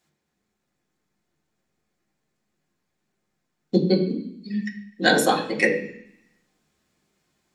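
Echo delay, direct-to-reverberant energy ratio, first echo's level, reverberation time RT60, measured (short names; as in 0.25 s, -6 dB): none, -3.0 dB, none, 0.65 s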